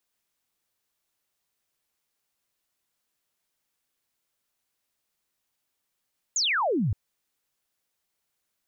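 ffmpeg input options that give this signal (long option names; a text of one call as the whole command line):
ffmpeg -f lavfi -i "aevalsrc='0.0794*clip(t/0.002,0,1)*clip((0.57-t)/0.002,0,1)*sin(2*PI*7300*0.57/log(87/7300)*(exp(log(87/7300)*t/0.57)-1))':duration=0.57:sample_rate=44100" out.wav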